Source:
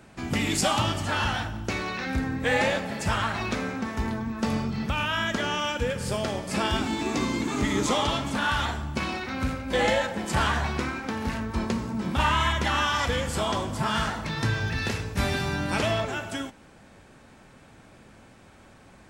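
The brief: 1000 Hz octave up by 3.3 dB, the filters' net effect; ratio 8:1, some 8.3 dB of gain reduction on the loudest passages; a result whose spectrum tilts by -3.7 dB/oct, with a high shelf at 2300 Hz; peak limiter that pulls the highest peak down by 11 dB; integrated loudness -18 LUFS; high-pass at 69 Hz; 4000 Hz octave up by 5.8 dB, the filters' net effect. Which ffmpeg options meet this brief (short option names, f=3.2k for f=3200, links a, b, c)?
-af "highpass=69,equalizer=f=1k:t=o:g=3,highshelf=f=2.3k:g=4.5,equalizer=f=4k:t=o:g=3.5,acompressor=threshold=-25dB:ratio=8,volume=15dB,alimiter=limit=-9.5dB:level=0:latency=1"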